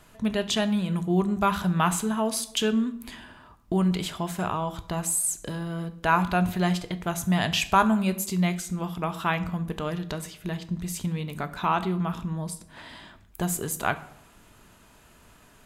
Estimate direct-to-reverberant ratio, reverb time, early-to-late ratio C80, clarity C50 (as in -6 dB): 11.0 dB, 0.70 s, 18.0 dB, 15.5 dB